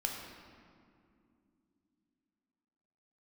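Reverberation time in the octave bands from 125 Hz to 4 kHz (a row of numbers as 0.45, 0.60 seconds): 3.4, 4.2, 2.9, 2.2, 1.8, 1.3 seconds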